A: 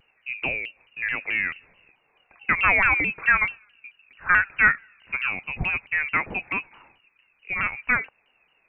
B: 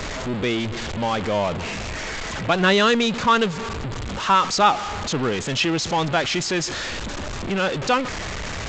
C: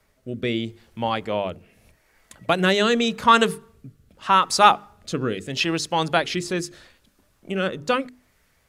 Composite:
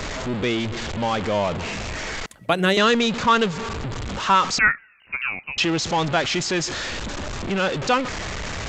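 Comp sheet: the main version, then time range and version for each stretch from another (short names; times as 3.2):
B
2.26–2.77 from C
4.59–5.58 from A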